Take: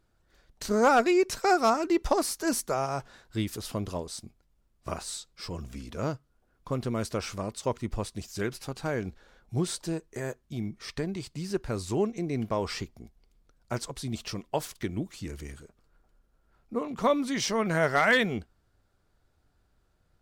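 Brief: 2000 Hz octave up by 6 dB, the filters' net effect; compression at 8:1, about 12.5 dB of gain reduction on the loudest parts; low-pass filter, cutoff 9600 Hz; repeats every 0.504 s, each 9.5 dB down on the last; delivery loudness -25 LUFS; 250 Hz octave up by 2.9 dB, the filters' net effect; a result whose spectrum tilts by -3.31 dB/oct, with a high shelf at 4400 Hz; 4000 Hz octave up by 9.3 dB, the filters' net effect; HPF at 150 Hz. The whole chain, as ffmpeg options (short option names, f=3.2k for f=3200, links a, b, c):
-af "highpass=150,lowpass=9.6k,equalizer=f=250:t=o:g=4.5,equalizer=f=2k:t=o:g=5,equalizer=f=4k:t=o:g=7.5,highshelf=f=4.4k:g=5.5,acompressor=threshold=-27dB:ratio=8,aecho=1:1:504|1008|1512|2016:0.335|0.111|0.0365|0.012,volume=7.5dB"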